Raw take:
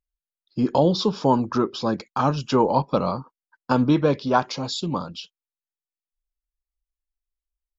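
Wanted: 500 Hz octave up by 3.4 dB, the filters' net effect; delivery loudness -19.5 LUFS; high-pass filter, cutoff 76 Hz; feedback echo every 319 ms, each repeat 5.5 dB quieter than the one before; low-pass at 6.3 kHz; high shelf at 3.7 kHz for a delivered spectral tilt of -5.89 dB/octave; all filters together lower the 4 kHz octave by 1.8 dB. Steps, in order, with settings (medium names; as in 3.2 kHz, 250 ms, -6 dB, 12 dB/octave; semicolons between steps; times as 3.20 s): high-pass 76 Hz; low-pass 6.3 kHz; peaking EQ 500 Hz +4 dB; treble shelf 3.7 kHz +5.5 dB; peaking EQ 4 kHz -5 dB; feedback delay 319 ms, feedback 53%, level -5.5 dB; trim +0.5 dB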